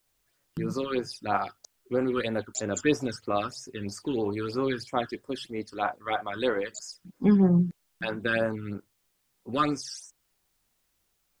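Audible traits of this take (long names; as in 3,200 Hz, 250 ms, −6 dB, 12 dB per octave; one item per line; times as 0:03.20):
phaser sweep stages 12, 3.1 Hz, lowest notch 680–4,100 Hz
a quantiser's noise floor 12 bits, dither triangular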